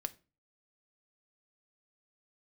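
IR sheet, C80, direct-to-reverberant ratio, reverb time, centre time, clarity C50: 26.5 dB, 8.5 dB, 0.35 s, 2 ms, 21.0 dB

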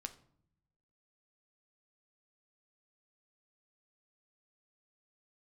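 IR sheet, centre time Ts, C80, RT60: 6 ms, 19.0 dB, no single decay rate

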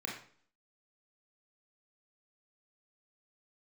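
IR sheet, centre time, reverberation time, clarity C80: 36 ms, 0.50 s, 9.0 dB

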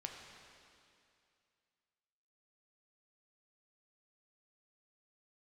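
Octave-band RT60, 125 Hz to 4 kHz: 2.4 s, 2.4 s, 2.5 s, 2.4 s, 2.5 s, 2.4 s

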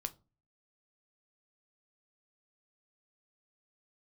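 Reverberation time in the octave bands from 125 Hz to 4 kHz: 0.55 s, 0.45 s, 0.35 s, 0.30 s, 0.20 s, 0.20 s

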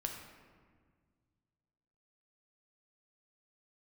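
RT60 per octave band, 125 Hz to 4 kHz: 2.8 s, 2.3 s, 1.8 s, 1.6 s, 1.4 s, 0.95 s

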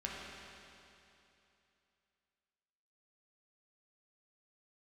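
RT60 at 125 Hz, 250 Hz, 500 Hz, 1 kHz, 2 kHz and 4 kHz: 2.9 s, 2.9 s, 2.9 s, 2.9 s, 2.8 s, 2.8 s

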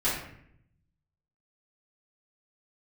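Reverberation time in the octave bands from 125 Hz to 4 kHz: 1.4 s, 1.0 s, 0.75 s, 0.60 s, 0.70 s, 0.45 s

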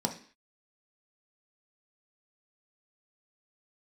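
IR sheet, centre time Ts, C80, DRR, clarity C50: 12 ms, 16.0 dB, 2.5 dB, 11.0 dB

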